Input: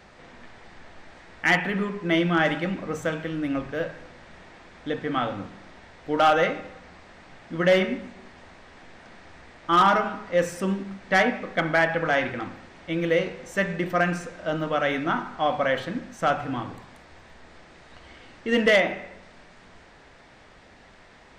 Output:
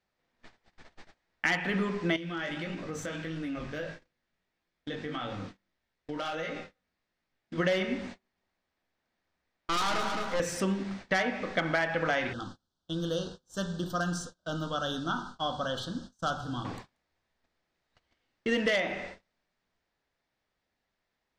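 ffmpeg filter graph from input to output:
-filter_complex "[0:a]asettb=1/sr,asplit=3[a][b][c];[a]atrim=end=2.164[d];[b]atrim=start=2.16:end=7.58,asetpts=PTS-STARTPTS,afade=t=in:d=0.004:c=qsin,afade=t=out:st=5.416:d=0.004:c=qsin,equalizer=f=810:t=o:w=1.4:g=-4,flanger=delay=17.5:depth=3.7:speed=1.6,acompressor=threshold=-32dB:ratio=6:attack=3.2:release=140:knee=1:detection=peak[e];[c]atrim=start=7.576[f];[d][e]acrossfade=d=0.004:c1=hsin:c2=qsin[g];[g][f]acrossfade=d=0.004:c1=qsin:c2=hsin,asettb=1/sr,asplit=3[h][i][j];[h]atrim=end=8.144[k];[i]atrim=start=8.14:end=10.4,asetpts=PTS-STARTPTS,afade=t=in:d=0.004:c=qsin,afade=t=out:st=2.256:d=0.004:c=qsin,aeval=exprs='(tanh(17.8*val(0)+0.7)-tanh(0.7))/17.8':c=same,aecho=1:1:216|432|648|864:0.473|0.151|0.0485|0.0155,atrim=end_sample=99666[l];[j]atrim=start=10.396[m];[k][l]acrossfade=d=0.004:c1=hsin:c2=qsin[n];[n][m]acrossfade=d=0.004:c1=qsin:c2=hsin,asettb=1/sr,asplit=3[o][p][q];[o]atrim=end=12.334[r];[p]atrim=start=12.33:end=16.65,asetpts=PTS-STARTPTS,afade=t=in:d=0.004:c=qsin,afade=t=out:st=4.316:d=0.004:c=qsin,asuperstop=centerf=2200:order=8:qfactor=1.4,equalizer=f=550:w=0.49:g=-10.5[s];[q]atrim=start=16.646[t];[r][s]acrossfade=d=0.004:c1=hsin:c2=qsin[u];[u][t]acrossfade=d=0.004:c1=qsin:c2=hsin,agate=range=-32dB:threshold=-42dB:ratio=16:detection=peak,equalizer=f=4.9k:w=0.92:g=6,acompressor=threshold=-25dB:ratio=6"

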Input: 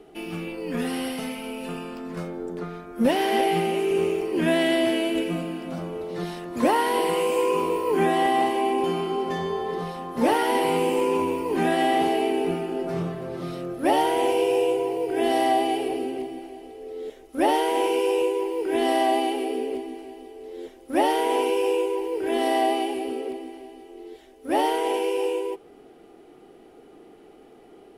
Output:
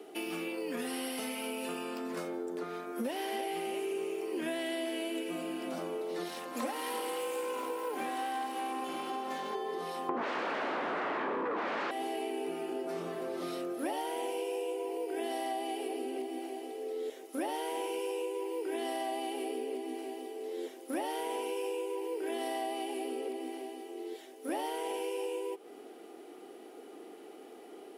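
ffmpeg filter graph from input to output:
-filter_complex "[0:a]asettb=1/sr,asplit=3[a][b][c];[a]atrim=end=6.284[d];[b]atrim=start=6.28:end=9.55,asetpts=PTS-STARTPTS,afade=t=in:d=0.004:c=qsin,afade=t=out:st=3.266:d=0.004:c=qsin,aeval=exprs='if(lt(val(0),0),0.251*val(0),val(0))':c=same,bandreject=f=50:t=h:w=6,bandreject=f=100:t=h:w=6,bandreject=f=150:t=h:w=6,bandreject=f=200:t=h:w=6,bandreject=f=250:t=h:w=6,bandreject=f=300:t=h:w=6,bandreject=f=350:t=h:w=6,aecho=1:1:3.8:0.59,atrim=end_sample=144207[e];[c]atrim=start=9.546[f];[d][e]acrossfade=d=0.004:c1=hsin:c2=qsin[g];[g][f]acrossfade=d=0.004:c1=qsin:c2=hsin,asettb=1/sr,asplit=3[h][i][j];[h]atrim=end=10.094[k];[i]atrim=start=10.09:end=11.91,asetpts=PTS-STARTPTS,afade=t=in:d=0.004:c=qsin,afade=t=out:st=1.816:d=0.004:c=qsin,aeval=exprs='0.355*sin(PI/2*7.94*val(0)/0.355)':c=same,lowpass=1.4k[l];[j]atrim=start=11.906[m];[k][l]acrossfade=d=0.004:c1=hsin:c2=qsin[n];[n][m]acrossfade=d=0.004:c1=qsin:c2=hsin,highpass=f=250:w=0.5412,highpass=f=250:w=1.3066,highshelf=f=5.3k:g=7,acompressor=threshold=-34dB:ratio=6"

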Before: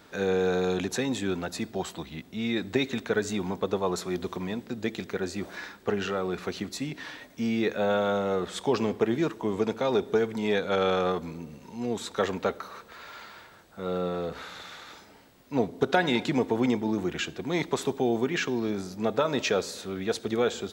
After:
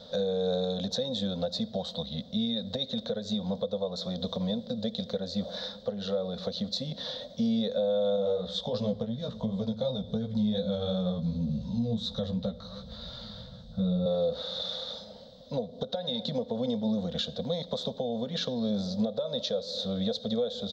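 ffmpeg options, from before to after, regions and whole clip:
-filter_complex "[0:a]asettb=1/sr,asplit=3[a][b][c];[a]atrim=end=8.164[d];[b]atrim=start=8.16:end=14.06,asetpts=PTS-STARTPTS,afade=t=in:d=0.004:c=qsin,afade=t=out:st=5.896:d=0.004:c=qsin,asubboost=boost=11:cutoff=160,flanger=delay=15.5:depth=3.1:speed=2.8[e];[c]atrim=start=14.056[f];[d][e]acrossfade=d=0.004:c1=hsin:c2=qsin[g];[g][f]acrossfade=d=0.004:c1=qsin:c2=hsin,acompressor=threshold=-30dB:ratio=6,firequalizer=gain_entry='entry(130,0);entry(220,6);entry(340,-26);entry(510,13);entry(850,-7);entry(2500,-20);entry(3600,11);entry(8700,-23)':delay=0.05:min_phase=1,alimiter=level_in=1dB:limit=-24dB:level=0:latency=1:release=416,volume=-1dB,volume=4.5dB"

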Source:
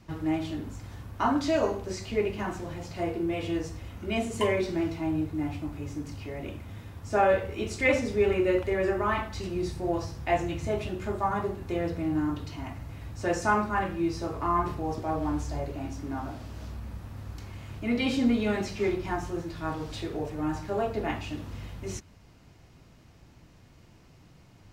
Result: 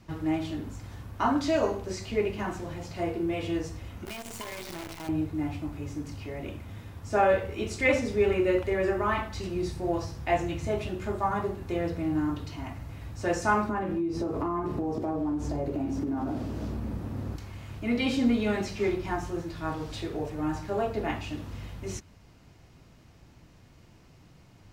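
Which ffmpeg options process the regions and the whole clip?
-filter_complex "[0:a]asettb=1/sr,asplit=3[a][b][c];[a]atrim=end=4.054[d];[b]atrim=start=4.05:end=5.09,asetpts=PTS-STARTPTS,afade=t=in:d=0.004:c=qsin,afade=t=out:st=1.036:d=0.004:c=qsin,lowshelf=f=620:t=q:w=1.5:g=-6.5,acompressor=threshold=-35dB:ratio=12:attack=3.2:release=140:knee=1:detection=peak,acrusher=bits=7:dc=4:mix=0:aa=0.000001[e];[c]atrim=start=5.086[f];[d][e]acrossfade=d=0.004:c1=hsin:c2=qsin[g];[g][f]acrossfade=d=0.004:c1=qsin:c2=hsin,asettb=1/sr,asplit=3[h][i][j];[h]atrim=end=13.694[k];[i]atrim=start=13.69:end=17.36,asetpts=PTS-STARTPTS,afade=t=in:d=0.004:c=qsin,afade=t=out:st=3.666:d=0.004:c=qsin,equalizer=f=300:w=0.51:g=13.5,acompressor=threshold=-26dB:ratio=12:attack=3.2:release=140:knee=1:detection=peak[l];[j]atrim=start=17.356[m];[k][l]acrossfade=d=0.004:c1=hsin:c2=qsin[n];[n][m]acrossfade=d=0.004:c1=qsin:c2=hsin"

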